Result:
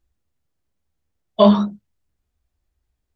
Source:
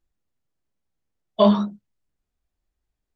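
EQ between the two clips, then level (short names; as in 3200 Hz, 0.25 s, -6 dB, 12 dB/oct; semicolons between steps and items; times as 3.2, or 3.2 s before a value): bell 73 Hz +10.5 dB 0.65 oct; +3.5 dB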